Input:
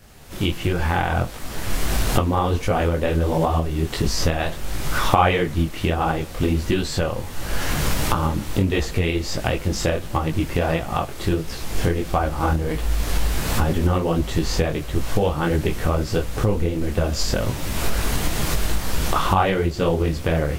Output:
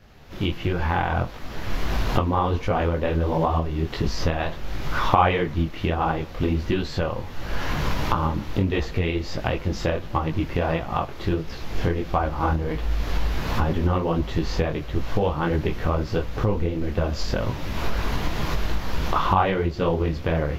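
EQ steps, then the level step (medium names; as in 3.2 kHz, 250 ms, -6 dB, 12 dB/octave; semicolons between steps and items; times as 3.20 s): dynamic bell 1 kHz, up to +5 dB, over -41 dBFS, Q 4.4; boxcar filter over 5 samples; -2.5 dB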